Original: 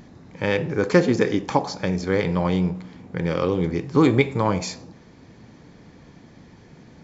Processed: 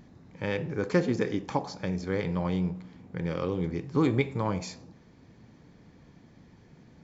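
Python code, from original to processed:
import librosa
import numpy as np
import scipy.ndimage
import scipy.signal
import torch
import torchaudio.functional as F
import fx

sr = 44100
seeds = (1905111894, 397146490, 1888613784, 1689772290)

y = fx.bass_treble(x, sr, bass_db=3, treble_db=-1)
y = y * 10.0 ** (-9.0 / 20.0)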